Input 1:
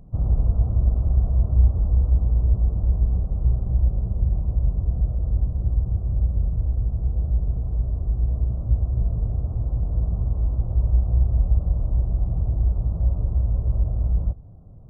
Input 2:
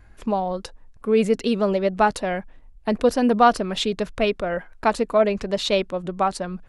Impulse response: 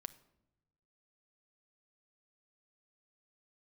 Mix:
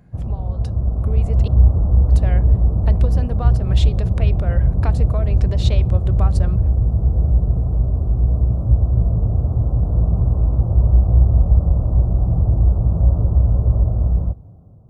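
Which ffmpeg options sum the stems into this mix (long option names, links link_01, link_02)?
-filter_complex "[0:a]volume=0dB[link_01];[1:a]acompressor=threshold=-28dB:ratio=12,volume=-11dB,asplit=3[link_02][link_03][link_04];[link_02]atrim=end=1.48,asetpts=PTS-STARTPTS,afade=type=out:start_time=1.476:duration=0.004:curve=hsin[link_05];[link_03]atrim=start=1.48:end=2.09,asetpts=PTS-STARTPTS,volume=0[link_06];[link_04]atrim=start=2.09,asetpts=PTS-STARTPTS,afade=type=in:duration=0.004:curve=hsin[link_07];[link_05][link_06][link_07]concat=n=3:v=0:a=1,asplit=2[link_08][link_09];[link_09]volume=-4dB[link_10];[2:a]atrim=start_sample=2205[link_11];[link_10][link_11]afir=irnorm=-1:irlink=0[link_12];[link_01][link_08][link_12]amix=inputs=3:normalize=0,highpass=64,dynaudnorm=framelen=440:gausssize=5:maxgain=11.5dB"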